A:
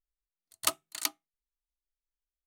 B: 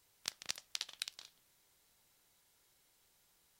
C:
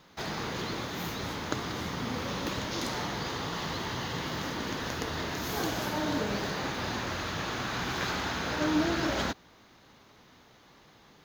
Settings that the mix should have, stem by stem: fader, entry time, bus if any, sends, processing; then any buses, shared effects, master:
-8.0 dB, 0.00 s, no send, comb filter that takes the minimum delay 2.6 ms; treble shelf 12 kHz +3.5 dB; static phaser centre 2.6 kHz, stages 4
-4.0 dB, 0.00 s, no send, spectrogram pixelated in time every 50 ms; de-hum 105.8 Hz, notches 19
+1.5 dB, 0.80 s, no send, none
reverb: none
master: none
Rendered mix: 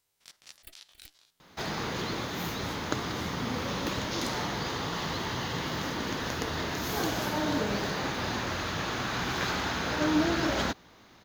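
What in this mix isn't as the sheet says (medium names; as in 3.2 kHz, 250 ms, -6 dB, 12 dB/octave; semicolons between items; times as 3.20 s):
stem A -8.0 dB -> -19.5 dB; stem C: entry 0.80 s -> 1.40 s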